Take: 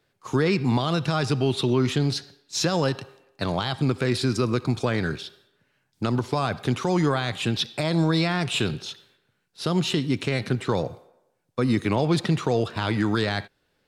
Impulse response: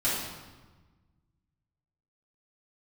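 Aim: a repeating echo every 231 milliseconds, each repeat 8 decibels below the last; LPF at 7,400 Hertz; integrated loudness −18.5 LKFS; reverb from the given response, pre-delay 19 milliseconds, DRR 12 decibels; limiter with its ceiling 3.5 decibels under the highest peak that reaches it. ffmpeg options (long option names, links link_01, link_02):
-filter_complex "[0:a]lowpass=7400,alimiter=limit=-15dB:level=0:latency=1,aecho=1:1:231|462|693|924|1155:0.398|0.159|0.0637|0.0255|0.0102,asplit=2[link_01][link_02];[1:a]atrim=start_sample=2205,adelay=19[link_03];[link_02][link_03]afir=irnorm=-1:irlink=0,volume=-22.5dB[link_04];[link_01][link_04]amix=inputs=2:normalize=0,volume=7.5dB"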